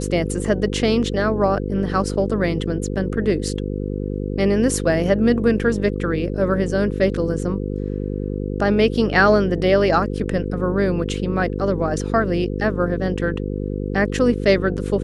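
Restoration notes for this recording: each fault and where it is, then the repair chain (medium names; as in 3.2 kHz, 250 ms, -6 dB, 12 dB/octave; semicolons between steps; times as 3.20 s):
buzz 50 Hz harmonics 10 -25 dBFS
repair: de-hum 50 Hz, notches 10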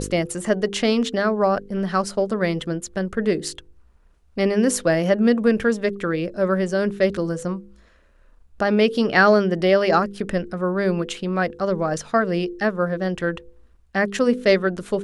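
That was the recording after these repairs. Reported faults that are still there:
nothing left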